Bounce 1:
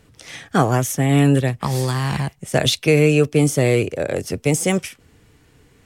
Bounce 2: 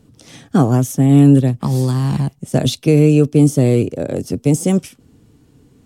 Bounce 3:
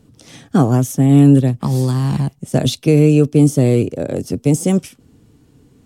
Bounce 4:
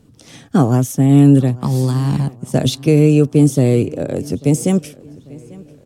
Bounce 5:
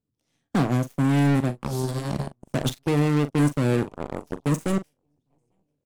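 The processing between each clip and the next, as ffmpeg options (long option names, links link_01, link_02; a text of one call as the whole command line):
ffmpeg -i in.wav -af "equalizer=frequency=125:width_type=o:width=1:gain=5,equalizer=frequency=250:width_type=o:width=1:gain=10,equalizer=frequency=2000:width_type=o:width=1:gain=-9,volume=-2dB" out.wav
ffmpeg -i in.wav -af anull out.wav
ffmpeg -i in.wav -filter_complex "[0:a]asplit=2[link_01][link_02];[link_02]adelay=843,lowpass=frequency=4500:poles=1,volume=-22dB,asplit=2[link_03][link_04];[link_04]adelay=843,lowpass=frequency=4500:poles=1,volume=0.51,asplit=2[link_05][link_06];[link_06]adelay=843,lowpass=frequency=4500:poles=1,volume=0.51,asplit=2[link_07][link_08];[link_08]adelay=843,lowpass=frequency=4500:poles=1,volume=0.51[link_09];[link_01][link_03][link_05][link_07][link_09]amix=inputs=5:normalize=0" out.wav
ffmpeg -i in.wav -filter_complex "[0:a]aeval=exprs='0.891*(cos(1*acos(clip(val(0)/0.891,-1,1)))-cos(1*PI/2))+0.224*(cos(2*acos(clip(val(0)/0.891,-1,1)))-cos(2*PI/2))+0.0126*(cos(3*acos(clip(val(0)/0.891,-1,1)))-cos(3*PI/2))+0.126*(cos(7*acos(clip(val(0)/0.891,-1,1)))-cos(7*PI/2))':channel_layout=same,volume=12.5dB,asoftclip=hard,volume=-12.5dB,asplit=2[link_01][link_02];[link_02]adelay=41,volume=-13dB[link_03];[link_01][link_03]amix=inputs=2:normalize=0,volume=-3.5dB" out.wav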